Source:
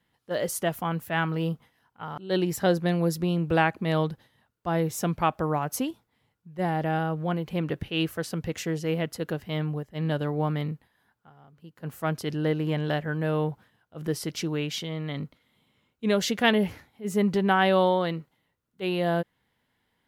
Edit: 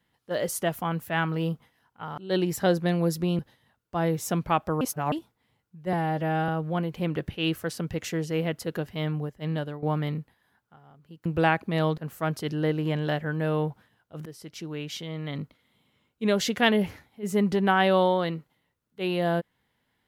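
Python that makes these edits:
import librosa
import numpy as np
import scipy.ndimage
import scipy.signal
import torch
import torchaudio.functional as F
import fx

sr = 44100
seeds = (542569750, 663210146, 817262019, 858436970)

y = fx.edit(x, sr, fx.move(start_s=3.39, length_s=0.72, to_s=11.79),
    fx.reverse_span(start_s=5.53, length_s=0.31),
    fx.stretch_span(start_s=6.65, length_s=0.37, factor=1.5),
    fx.fade_out_to(start_s=9.99, length_s=0.37, floor_db=-13.5),
    fx.fade_in_from(start_s=14.07, length_s=1.17, floor_db=-16.5), tone=tone)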